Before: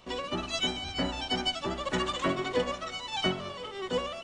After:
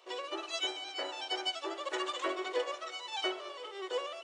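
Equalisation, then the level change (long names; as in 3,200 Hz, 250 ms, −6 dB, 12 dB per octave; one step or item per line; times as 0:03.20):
linear-phase brick-wall high-pass 300 Hz
−4.5 dB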